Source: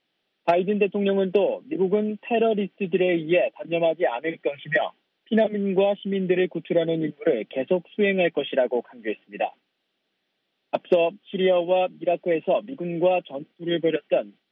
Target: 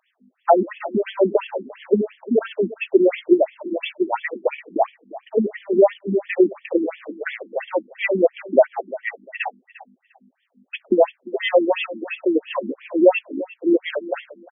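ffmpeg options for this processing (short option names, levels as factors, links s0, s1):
-filter_complex "[0:a]asettb=1/sr,asplit=3[s0][s1][s2];[s0]atrim=end=3.434[s3];[s1]atrim=start=3.43:end=4,asetpts=PTS-STARTPTS,afade=t=in:d=0.004:c=qsin,afade=t=out:st=0.566:d=0.004:c=qsin,equalizer=f=510:w=1:g=-11.5[s4];[s2]atrim=start=3.996[s5];[s3][s4]acrossfade=d=0.004:c1=hsin:c2=qsin[s6];[s6][s5]acrossfade=d=0.004:c1=qsin:c2=hsin,acrossover=split=230|550[s7][s8][s9];[s8]acrusher=bits=5:mode=log:mix=0:aa=0.000001[s10];[s7][s10][s9]amix=inputs=3:normalize=0,aeval=exprs='val(0)+0.00355*(sin(2*PI*50*n/s)+sin(2*PI*2*50*n/s)/2+sin(2*PI*3*50*n/s)/3+sin(2*PI*4*50*n/s)/4+sin(2*PI*5*50*n/s)/5)':c=same,asplit=2[s11][s12];[s12]asoftclip=type=tanh:threshold=0.106,volume=0.501[s13];[s11][s13]amix=inputs=2:normalize=0,aecho=1:1:350|700:0.133|0.0267,afftfilt=real='re*between(b*sr/1024,250*pow(2500/250,0.5+0.5*sin(2*PI*2.9*pts/sr))/1.41,250*pow(2500/250,0.5+0.5*sin(2*PI*2.9*pts/sr))*1.41)':imag='im*between(b*sr/1024,250*pow(2500/250,0.5+0.5*sin(2*PI*2.9*pts/sr))/1.41,250*pow(2500/250,0.5+0.5*sin(2*PI*2.9*pts/sr))*1.41)':win_size=1024:overlap=0.75,volume=2.37"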